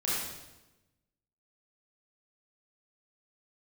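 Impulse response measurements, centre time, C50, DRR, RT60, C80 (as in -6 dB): 87 ms, -2.5 dB, -8.5 dB, 1.0 s, 1.0 dB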